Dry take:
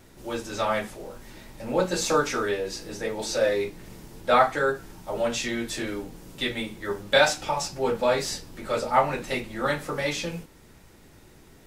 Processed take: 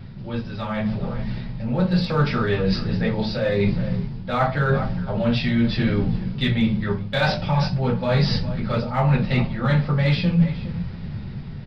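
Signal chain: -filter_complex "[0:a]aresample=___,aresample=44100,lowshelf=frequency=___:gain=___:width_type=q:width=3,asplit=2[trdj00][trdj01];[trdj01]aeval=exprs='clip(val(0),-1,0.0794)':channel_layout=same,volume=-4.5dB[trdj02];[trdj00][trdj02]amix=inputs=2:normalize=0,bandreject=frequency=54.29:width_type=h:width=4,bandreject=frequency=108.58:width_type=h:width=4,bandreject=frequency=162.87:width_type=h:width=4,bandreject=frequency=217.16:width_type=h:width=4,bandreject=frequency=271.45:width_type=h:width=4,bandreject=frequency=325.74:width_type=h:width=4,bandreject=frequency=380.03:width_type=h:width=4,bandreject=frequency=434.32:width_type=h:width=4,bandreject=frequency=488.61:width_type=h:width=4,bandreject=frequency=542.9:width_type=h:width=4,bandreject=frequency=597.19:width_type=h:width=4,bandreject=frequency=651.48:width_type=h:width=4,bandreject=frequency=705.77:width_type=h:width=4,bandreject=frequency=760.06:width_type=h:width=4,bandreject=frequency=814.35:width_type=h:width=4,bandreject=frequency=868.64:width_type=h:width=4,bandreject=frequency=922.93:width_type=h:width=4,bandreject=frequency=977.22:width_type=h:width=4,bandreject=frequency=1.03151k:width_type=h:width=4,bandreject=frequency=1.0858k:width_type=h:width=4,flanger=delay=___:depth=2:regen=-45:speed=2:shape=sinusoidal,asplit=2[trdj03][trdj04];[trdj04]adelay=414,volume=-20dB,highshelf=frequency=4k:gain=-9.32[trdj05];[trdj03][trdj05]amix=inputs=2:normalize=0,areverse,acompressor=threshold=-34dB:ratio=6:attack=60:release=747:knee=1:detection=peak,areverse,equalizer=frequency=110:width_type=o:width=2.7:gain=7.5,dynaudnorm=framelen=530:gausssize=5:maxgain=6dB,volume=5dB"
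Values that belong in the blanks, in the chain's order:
11025, 240, 7, 7.2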